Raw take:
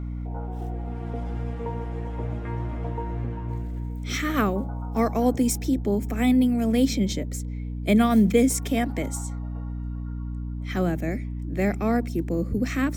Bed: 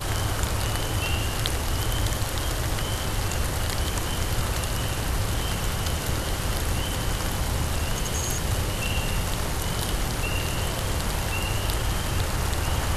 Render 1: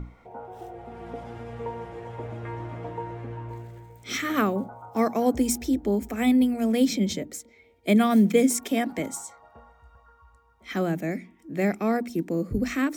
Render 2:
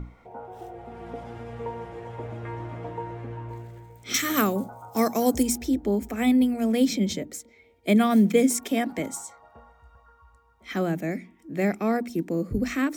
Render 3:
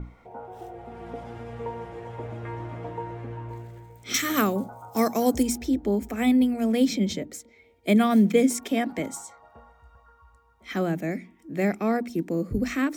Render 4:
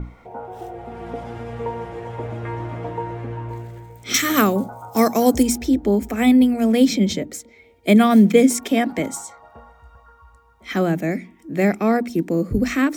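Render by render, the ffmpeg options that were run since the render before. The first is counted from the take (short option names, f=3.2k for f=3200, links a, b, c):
-af "bandreject=f=60:t=h:w=6,bandreject=f=120:t=h:w=6,bandreject=f=180:t=h:w=6,bandreject=f=240:t=h:w=6,bandreject=f=300:t=h:w=6"
-filter_complex "[0:a]asettb=1/sr,asplit=3[a][b][c];[a]atrim=end=4.144[d];[b]atrim=start=4.14:end=5.43,asetpts=PTS-STARTPTS,afade=t=in:d=0.004:c=qsin,afade=t=out:st=1.286:d=0.004:c=qsin,bass=f=250:g=1,treble=f=4k:g=14[e];[c]atrim=start=5.426[f];[d][e]acrossfade=d=0.004:c1=hsin:c2=qsin[g];[g][f]acrossfade=d=0.004:c1=qsin:c2=hsin"
-af "adynamicequalizer=threshold=0.00447:dfrequency=6100:dqfactor=0.7:tfrequency=6100:tqfactor=0.7:attack=5:release=100:ratio=0.375:range=3:mode=cutabove:tftype=highshelf"
-af "volume=6.5dB"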